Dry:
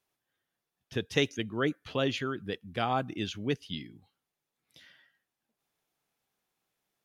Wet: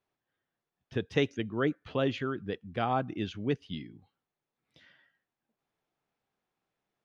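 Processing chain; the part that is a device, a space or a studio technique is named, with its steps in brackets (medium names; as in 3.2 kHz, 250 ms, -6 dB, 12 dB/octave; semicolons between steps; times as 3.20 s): through cloth (low-pass 7.4 kHz; treble shelf 3.3 kHz -13 dB); trim +1 dB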